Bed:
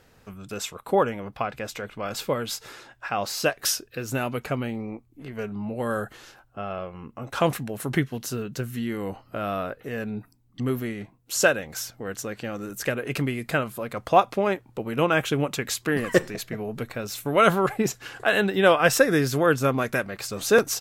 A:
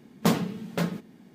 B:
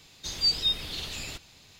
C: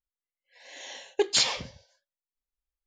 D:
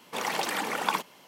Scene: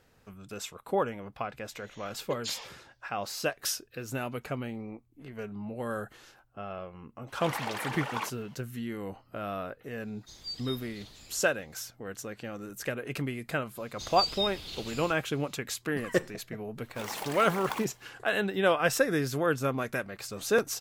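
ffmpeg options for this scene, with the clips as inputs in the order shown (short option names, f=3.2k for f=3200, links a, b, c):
-filter_complex "[4:a]asplit=2[a][b];[2:a]asplit=2[c][d];[0:a]volume=-7dB[e];[a]asplit=2[f][g];[g]highpass=f=720:p=1,volume=15dB,asoftclip=type=tanh:threshold=-7dB[h];[f][h]amix=inputs=2:normalize=0,lowpass=f=2.7k:p=1,volume=-6dB[i];[c]equalizer=f=2.7k:t=o:w=0.36:g=-7.5[j];[d]bandreject=f=1.8k:w=12[k];[b]acrusher=bits=2:mode=log:mix=0:aa=0.000001[l];[3:a]atrim=end=2.86,asetpts=PTS-STARTPTS,volume=-14dB,afade=t=in:d=0.004:c=hsin,afade=t=out:st=2.856:d=0.004:c=hsin,adelay=1110[m];[i]atrim=end=1.27,asetpts=PTS-STARTPTS,volume=-12dB,afade=t=in:d=0.004:c=hsin,afade=t=out:st=1.266:d=0.004:c=hsin,adelay=7280[n];[j]atrim=end=1.79,asetpts=PTS-STARTPTS,volume=-14.5dB,afade=t=in:d=0.004:c=hsin,afade=t=out:st=1.786:d=0.004:c=hsin,adelay=10030[o];[k]atrim=end=1.79,asetpts=PTS-STARTPTS,volume=-6dB,afade=t=in:d=0.004:c=hsin,afade=t=out:st=1.786:d=0.004:c=hsin,adelay=13750[p];[l]atrim=end=1.27,asetpts=PTS-STARTPTS,volume=-9.5dB,afade=t=in:d=0.004:c=hsin,afade=t=out:st=1.266:d=0.004:c=hsin,adelay=16830[q];[e][m][n][o][p][q]amix=inputs=6:normalize=0"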